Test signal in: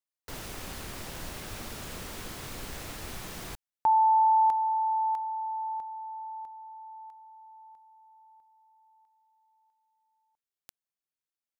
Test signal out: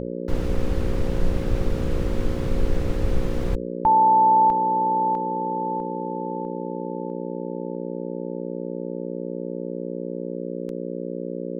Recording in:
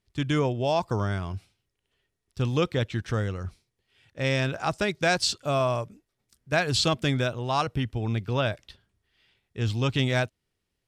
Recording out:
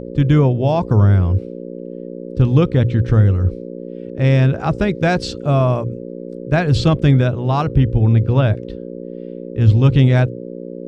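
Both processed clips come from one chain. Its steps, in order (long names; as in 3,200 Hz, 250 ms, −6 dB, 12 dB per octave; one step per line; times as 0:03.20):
RIAA equalisation playback
hum with harmonics 60 Hz, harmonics 9, −34 dBFS 0 dB per octave
mains-hum notches 60/120 Hz
level +5 dB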